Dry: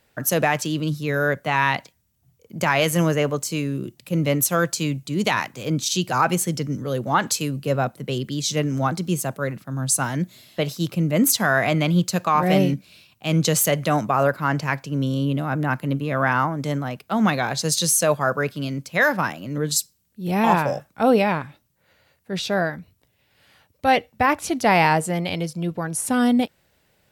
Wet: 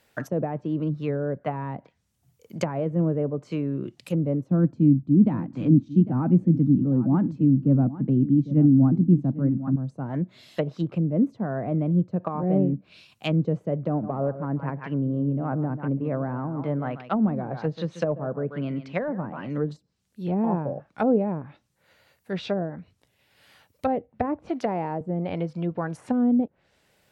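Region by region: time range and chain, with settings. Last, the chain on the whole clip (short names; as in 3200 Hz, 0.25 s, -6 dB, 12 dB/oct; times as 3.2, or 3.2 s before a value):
4.51–9.76 resonant low shelf 350 Hz +7 dB, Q 3 + echo 0.801 s -15 dB
13.89–19.5 LPF 3200 Hz + hard clip -11 dBFS + echo 0.138 s -13 dB
24.49–25.01 HPF 140 Hz + tilt +2 dB/oct
whole clip: treble ducked by the level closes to 420 Hz, closed at -18.5 dBFS; low shelf 150 Hz -6 dB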